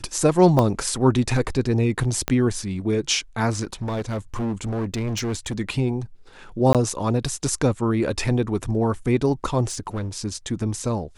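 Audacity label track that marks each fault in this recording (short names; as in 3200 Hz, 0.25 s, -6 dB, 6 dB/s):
0.590000	0.590000	pop -9 dBFS
2.280000	2.280000	pop -7 dBFS
3.630000	5.600000	clipped -22.5 dBFS
6.730000	6.750000	gap 17 ms
9.700000	10.090000	clipped -23 dBFS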